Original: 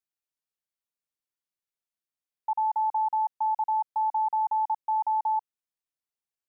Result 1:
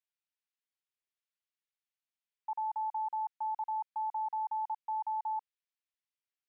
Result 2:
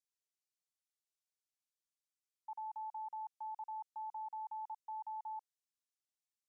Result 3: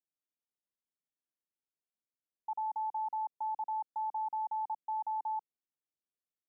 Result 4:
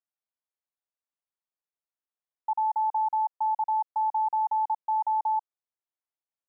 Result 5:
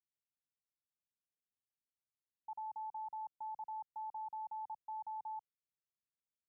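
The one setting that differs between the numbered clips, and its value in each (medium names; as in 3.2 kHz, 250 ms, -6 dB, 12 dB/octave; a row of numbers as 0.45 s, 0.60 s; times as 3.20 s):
band-pass filter, frequency: 2.5 kHz, 6.5 kHz, 280 Hz, 820 Hz, 110 Hz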